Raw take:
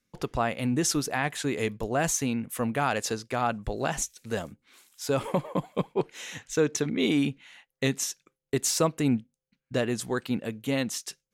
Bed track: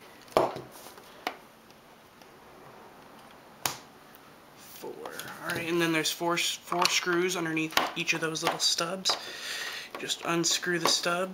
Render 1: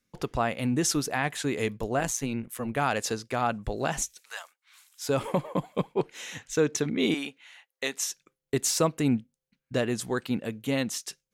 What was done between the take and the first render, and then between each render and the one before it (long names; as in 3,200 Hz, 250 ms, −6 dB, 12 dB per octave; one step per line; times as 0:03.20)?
0:01.99–0:02.77: amplitude modulation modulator 120 Hz, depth 55%
0:04.20–0:05.03: high-pass filter 920 Hz 24 dB per octave
0:07.14–0:08.10: high-pass filter 530 Hz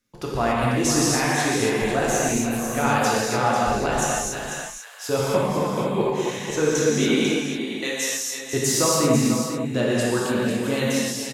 multi-tap delay 275/495 ms −14.5/−8.5 dB
reverb whose tail is shaped and stops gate 310 ms flat, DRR −6 dB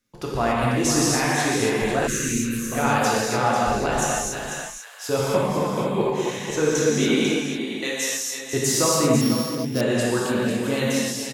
0:02.07–0:02.72: Butterworth band-reject 750 Hz, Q 0.64
0:09.21–0:09.81: samples sorted by size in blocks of 8 samples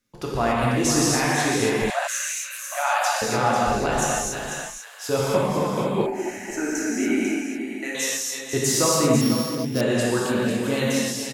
0:01.90–0:03.22: linear-phase brick-wall high-pass 550 Hz
0:06.06–0:07.95: phaser with its sweep stopped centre 720 Hz, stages 8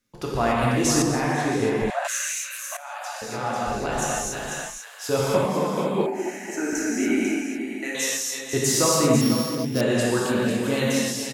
0:01.02–0:02.05: high-shelf EQ 2,200 Hz −11.5 dB
0:02.77–0:04.63: fade in, from −17.5 dB
0:05.45–0:06.73: Chebyshev high-pass filter 160 Hz, order 4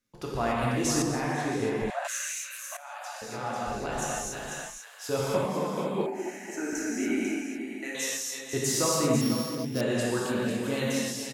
level −6 dB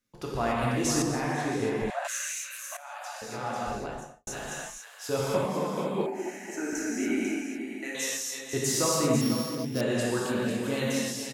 0:03.68–0:04.27: fade out and dull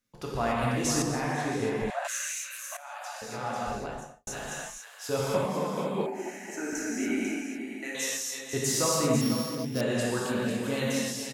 parametric band 340 Hz −5.5 dB 0.23 octaves